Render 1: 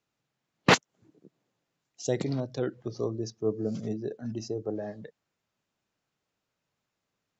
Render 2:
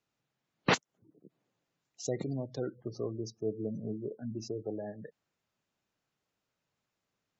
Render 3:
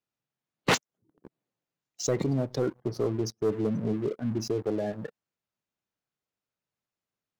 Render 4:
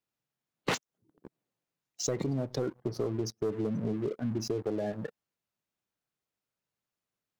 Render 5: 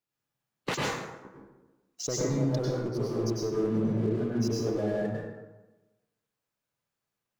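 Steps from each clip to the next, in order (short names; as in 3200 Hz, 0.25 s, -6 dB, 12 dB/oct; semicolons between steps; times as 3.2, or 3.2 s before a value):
spectral gate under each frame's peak -25 dB strong; in parallel at 0 dB: compressor, threshold -35 dBFS, peak gain reduction 19 dB; on the sum: gain -8 dB
sample leveller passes 3; gain -2 dB
compressor, threshold -28 dBFS, peak gain reduction 8 dB
plate-style reverb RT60 1.1 s, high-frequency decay 0.55×, pre-delay 85 ms, DRR -4.5 dB; gain -2 dB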